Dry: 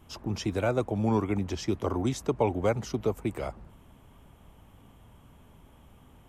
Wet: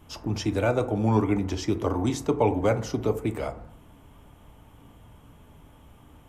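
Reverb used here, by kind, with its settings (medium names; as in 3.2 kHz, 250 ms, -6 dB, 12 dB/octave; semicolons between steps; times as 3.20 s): FDN reverb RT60 0.62 s, low-frequency decay 0.9×, high-frequency decay 0.4×, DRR 7.5 dB; trim +2.5 dB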